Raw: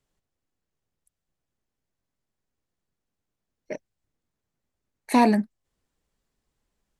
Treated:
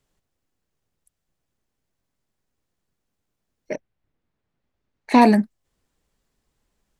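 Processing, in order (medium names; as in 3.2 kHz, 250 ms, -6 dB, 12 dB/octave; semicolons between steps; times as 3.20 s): 3.75–5.20 s: low-pass 2.7 kHz -> 4.9 kHz 12 dB/octave; trim +5 dB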